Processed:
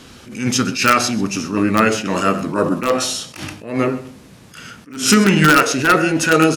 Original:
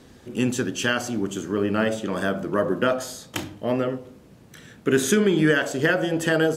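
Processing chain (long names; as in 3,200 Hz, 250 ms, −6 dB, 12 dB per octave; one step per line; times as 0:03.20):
tilt shelving filter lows −4.5 dB, about 1,100 Hz
single-tap delay 127 ms −17 dB
formants moved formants −3 semitones
in parallel at −4 dB: wrap-around overflow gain 11.5 dB
on the sum: level that may rise only so fast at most 120 dB per second
level +6 dB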